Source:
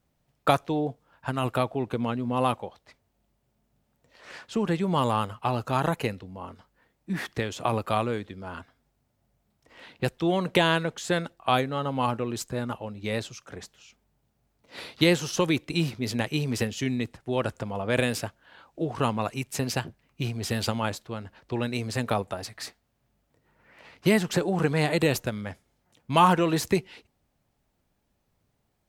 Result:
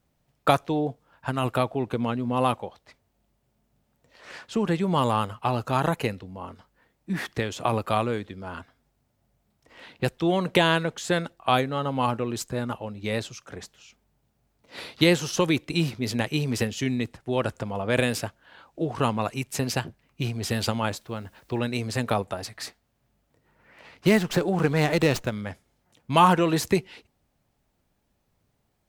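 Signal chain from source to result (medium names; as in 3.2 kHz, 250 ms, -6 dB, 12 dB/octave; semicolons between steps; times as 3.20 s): 20.90–21.58 s: added noise white -69 dBFS; 24.07–25.33 s: sliding maximum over 3 samples; trim +1.5 dB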